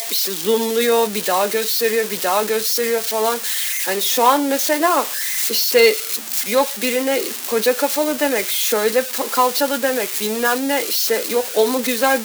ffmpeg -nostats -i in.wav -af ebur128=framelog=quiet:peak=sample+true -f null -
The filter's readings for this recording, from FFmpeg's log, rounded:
Integrated loudness:
  I:         -17.5 LUFS
  Threshold: -27.5 LUFS
Loudness range:
  LRA:         1.9 LU
  Threshold: -37.4 LUFS
  LRA low:   -18.2 LUFS
  LRA high:  -16.3 LUFS
Sample peak:
  Peak:       -1.8 dBFS
True peak:
  Peak:       -1.8 dBFS